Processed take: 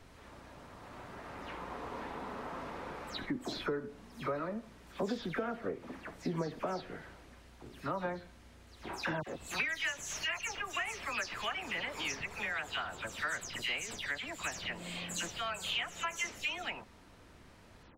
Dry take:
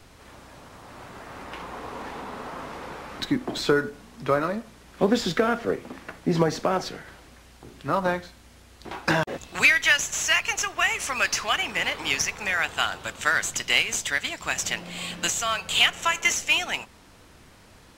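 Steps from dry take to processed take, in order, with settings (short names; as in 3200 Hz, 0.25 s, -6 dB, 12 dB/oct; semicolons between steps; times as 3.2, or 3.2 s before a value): spectral delay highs early, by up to 0.146 s; high shelf 4100 Hz -7.5 dB; compressor 2.5:1, threshold -31 dBFS, peak gain reduction 11 dB; gain -5 dB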